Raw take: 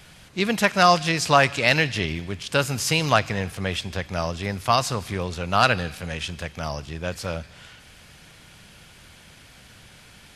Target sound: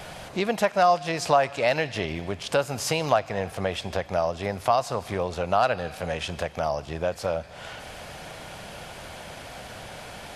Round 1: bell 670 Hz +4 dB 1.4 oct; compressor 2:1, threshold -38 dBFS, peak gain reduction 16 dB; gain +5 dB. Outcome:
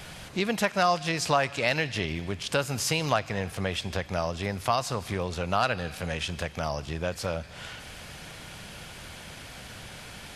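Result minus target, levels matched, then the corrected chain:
500 Hz band -3.0 dB
bell 670 Hz +14 dB 1.4 oct; compressor 2:1, threshold -38 dBFS, peak gain reduction 19.5 dB; gain +5 dB

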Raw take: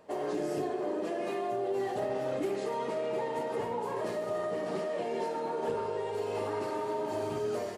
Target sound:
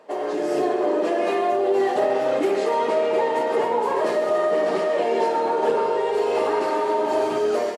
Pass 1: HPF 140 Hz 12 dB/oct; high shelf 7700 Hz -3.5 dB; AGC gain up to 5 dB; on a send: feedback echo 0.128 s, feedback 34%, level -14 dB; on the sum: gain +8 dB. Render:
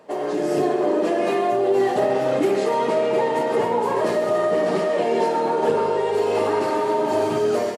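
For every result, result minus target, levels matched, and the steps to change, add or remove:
125 Hz band +9.5 dB; 8000 Hz band +2.0 dB
change: HPF 320 Hz 12 dB/oct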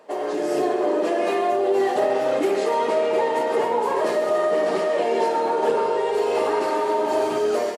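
8000 Hz band +3.0 dB
change: high shelf 7700 Hz -10 dB

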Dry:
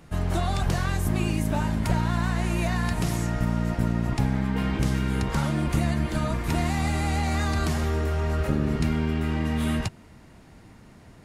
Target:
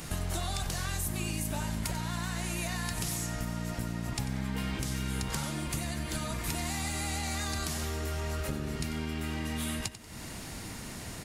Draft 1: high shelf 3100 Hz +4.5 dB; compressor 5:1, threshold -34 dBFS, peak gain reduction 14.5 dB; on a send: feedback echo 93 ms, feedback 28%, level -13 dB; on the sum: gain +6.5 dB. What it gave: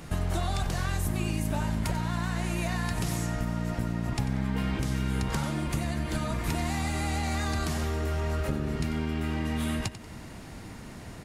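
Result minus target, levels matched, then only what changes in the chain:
8000 Hz band -8.0 dB; compressor: peak gain reduction -5 dB
change: high shelf 3100 Hz +16 dB; change: compressor 5:1, threshold -40 dBFS, peak gain reduction 19.5 dB

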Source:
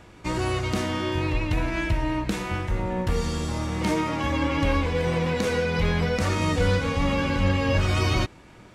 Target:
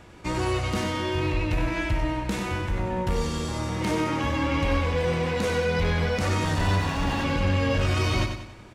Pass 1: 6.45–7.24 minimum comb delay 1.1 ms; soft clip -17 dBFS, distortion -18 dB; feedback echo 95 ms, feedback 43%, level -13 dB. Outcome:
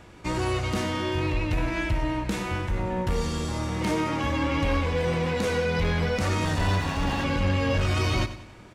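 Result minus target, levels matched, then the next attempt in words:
echo-to-direct -6 dB
6.45–7.24 minimum comb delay 1.1 ms; soft clip -17 dBFS, distortion -18 dB; feedback echo 95 ms, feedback 43%, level -7 dB

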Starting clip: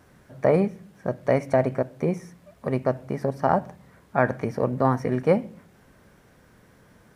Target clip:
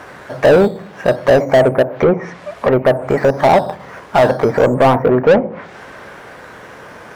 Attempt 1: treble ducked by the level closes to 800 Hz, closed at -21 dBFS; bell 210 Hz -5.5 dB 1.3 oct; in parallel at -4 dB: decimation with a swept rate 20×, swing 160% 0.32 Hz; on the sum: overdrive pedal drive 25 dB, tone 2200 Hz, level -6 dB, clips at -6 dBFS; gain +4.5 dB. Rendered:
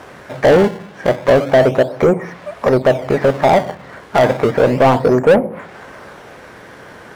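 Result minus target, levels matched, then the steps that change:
decimation with a swept rate: distortion +12 dB
change: decimation with a swept rate 6×, swing 160% 0.32 Hz

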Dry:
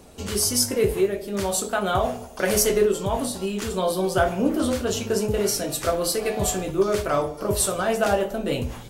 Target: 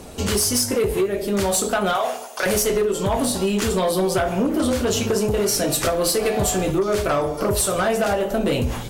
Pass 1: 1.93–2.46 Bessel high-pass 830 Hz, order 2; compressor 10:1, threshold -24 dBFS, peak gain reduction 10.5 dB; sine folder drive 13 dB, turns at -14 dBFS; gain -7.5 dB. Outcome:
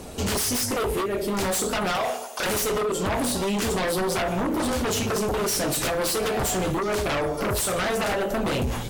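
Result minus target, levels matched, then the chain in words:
sine folder: distortion +14 dB
1.93–2.46 Bessel high-pass 830 Hz, order 2; compressor 10:1, threshold -24 dBFS, peak gain reduction 10.5 dB; sine folder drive 13 dB, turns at -7 dBFS; gain -7.5 dB

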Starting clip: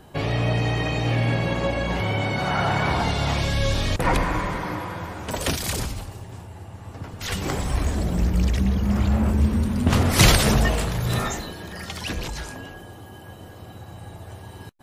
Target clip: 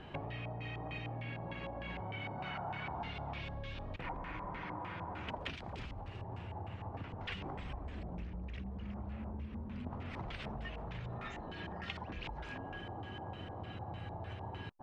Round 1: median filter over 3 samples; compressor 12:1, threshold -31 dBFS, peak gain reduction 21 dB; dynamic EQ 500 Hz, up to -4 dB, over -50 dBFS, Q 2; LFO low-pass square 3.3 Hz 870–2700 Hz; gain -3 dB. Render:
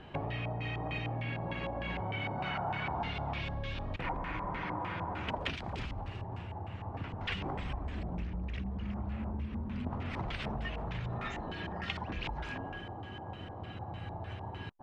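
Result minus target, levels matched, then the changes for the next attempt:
compressor: peak gain reduction -6 dB
change: compressor 12:1, threshold -37.5 dBFS, peak gain reduction 27 dB

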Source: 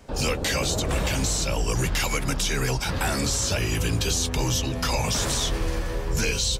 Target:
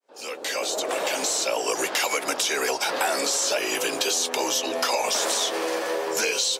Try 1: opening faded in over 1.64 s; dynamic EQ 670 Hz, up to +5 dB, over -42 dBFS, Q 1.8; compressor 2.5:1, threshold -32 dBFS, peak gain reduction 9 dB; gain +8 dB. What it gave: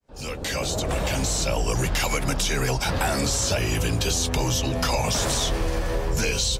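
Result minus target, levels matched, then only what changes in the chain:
250 Hz band +6.5 dB
add after dynamic EQ: HPF 350 Hz 24 dB/oct

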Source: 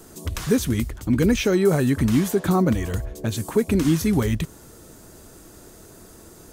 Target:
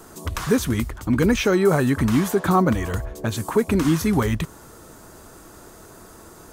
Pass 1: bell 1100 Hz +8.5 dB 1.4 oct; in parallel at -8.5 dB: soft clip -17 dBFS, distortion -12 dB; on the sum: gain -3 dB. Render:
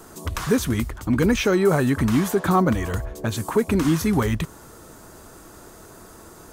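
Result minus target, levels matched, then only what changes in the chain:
soft clip: distortion +9 dB
change: soft clip -9.5 dBFS, distortion -21 dB

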